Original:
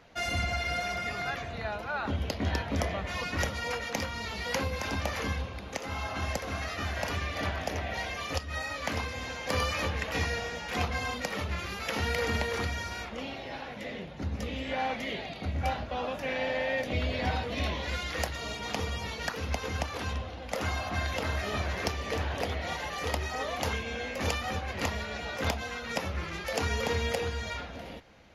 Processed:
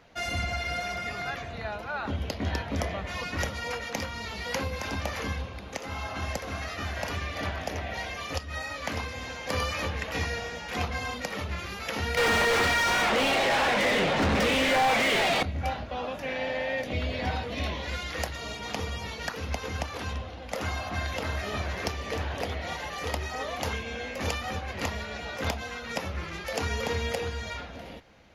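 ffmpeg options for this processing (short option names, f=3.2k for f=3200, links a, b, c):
-filter_complex "[0:a]asettb=1/sr,asplit=3[a][b][c];[a]atrim=end=12.174[d];[b]atrim=start=12.17:end=15.43,asetpts=PTS-STARTPTS,afade=t=in:d=0.004:c=qsin,afade=t=out:st=3.256:d=0.004:c=qsin,asplit=2[e][f];[f]highpass=f=720:p=1,volume=38dB,asoftclip=type=tanh:threshold=-16dB[g];[e][g]amix=inputs=2:normalize=0,lowpass=f=2.6k:p=1,volume=-6dB[h];[c]atrim=start=15.426[i];[d][h]acrossfade=d=0.004:c1=hsin:c2=qsin[j];[j][i]acrossfade=d=0.004:c1=qsin:c2=hsin"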